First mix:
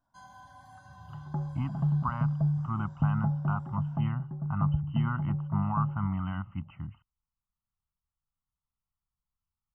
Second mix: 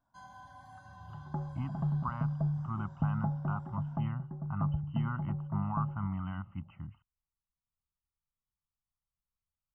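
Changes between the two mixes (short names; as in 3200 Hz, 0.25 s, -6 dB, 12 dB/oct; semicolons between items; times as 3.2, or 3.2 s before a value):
speech -4.5 dB; second sound: add bell 130 Hz -13.5 dB 0.26 oct; master: add high shelf 5300 Hz -6.5 dB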